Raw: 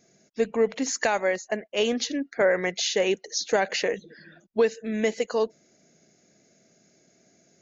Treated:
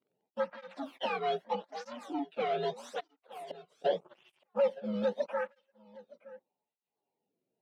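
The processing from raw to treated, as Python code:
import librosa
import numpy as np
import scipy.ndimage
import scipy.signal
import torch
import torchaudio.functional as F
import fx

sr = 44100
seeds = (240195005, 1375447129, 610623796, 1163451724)

p1 = fx.partial_stretch(x, sr, pct=129)
p2 = fx.peak_eq(p1, sr, hz=1100.0, db=-6.0, octaves=1.7)
p3 = fx.leveller(p2, sr, passes=3)
p4 = scipy.signal.sosfilt(scipy.signal.butter(2, 1700.0, 'lowpass', fs=sr, output='sos'), p3)
p5 = fx.low_shelf(p4, sr, hz=440.0, db=-9.0)
p6 = fx.gate_flip(p5, sr, shuts_db=-28.0, range_db=-31, at=(2.99, 3.84), fade=0.02)
p7 = p6 + fx.echo_single(p6, sr, ms=918, db=-21.0, dry=0)
p8 = fx.rider(p7, sr, range_db=4, speed_s=0.5)
p9 = fx.flanger_cancel(p8, sr, hz=0.81, depth_ms=1.2)
y = p9 * 10.0 ** (-2.0 / 20.0)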